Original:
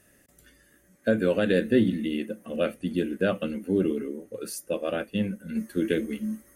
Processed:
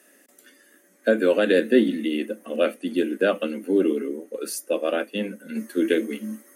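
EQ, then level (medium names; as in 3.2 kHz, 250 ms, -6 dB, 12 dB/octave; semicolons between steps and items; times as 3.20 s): steep high-pass 240 Hz 36 dB/octave; +5.0 dB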